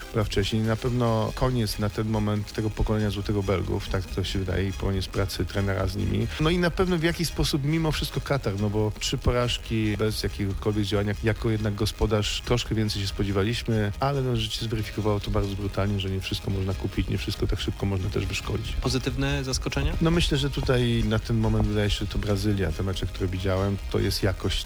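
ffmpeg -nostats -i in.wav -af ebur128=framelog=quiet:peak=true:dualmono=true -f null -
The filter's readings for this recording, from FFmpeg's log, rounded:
Integrated loudness:
  I:         -23.4 LUFS
  Threshold: -33.4 LUFS
Loudness range:
  LRA:         2.9 LU
  Threshold: -43.4 LUFS
  LRA low:   -24.9 LUFS
  LRA high:  -22.0 LUFS
True peak:
  Peak:      -12.1 dBFS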